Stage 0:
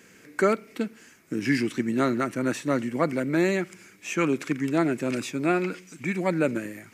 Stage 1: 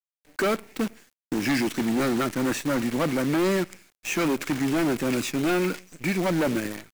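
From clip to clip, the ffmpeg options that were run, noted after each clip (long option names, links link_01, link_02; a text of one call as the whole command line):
ffmpeg -i in.wav -af "agate=range=-33dB:threshold=-41dB:ratio=3:detection=peak,asoftclip=type=hard:threshold=-24.5dB,acrusher=bits=7:dc=4:mix=0:aa=0.000001,volume=4dB" out.wav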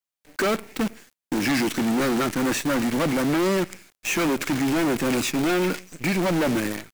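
ffmpeg -i in.wav -af "asoftclip=type=hard:threshold=-25dB,volume=5dB" out.wav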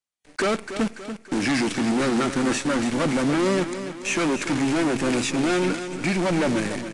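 ffmpeg -i in.wav -filter_complex "[0:a]asplit=2[link_01][link_02];[link_02]aecho=0:1:287|574|861|1148|1435:0.299|0.149|0.0746|0.0373|0.0187[link_03];[link_01][link_03]amix=inputs=2:normalize=0" -ar 22050 -c:a aac -b:a 64k out.aac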